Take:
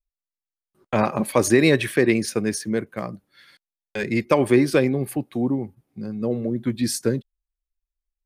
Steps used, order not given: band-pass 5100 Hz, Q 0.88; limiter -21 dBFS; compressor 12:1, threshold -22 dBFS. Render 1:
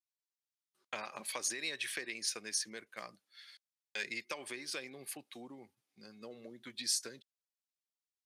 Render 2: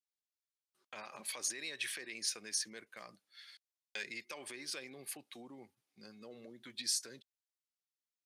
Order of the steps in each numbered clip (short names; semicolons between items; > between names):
compressor > band-pass > limiter; compressor > limiter > band-pass